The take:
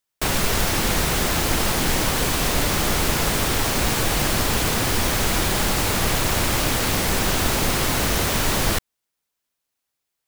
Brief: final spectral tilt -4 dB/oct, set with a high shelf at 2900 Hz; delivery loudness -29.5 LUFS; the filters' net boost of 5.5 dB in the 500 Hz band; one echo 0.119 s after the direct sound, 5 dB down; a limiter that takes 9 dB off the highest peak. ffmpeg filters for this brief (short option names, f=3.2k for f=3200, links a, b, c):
-af "equalizer=f=500:t=o:g=7,highshelf=f=2.9k:g=-4.5,alimiter=limit=-15.5dB:level=0:latency=1,aecho=1:1:119:0.562,volume=-5.5dB"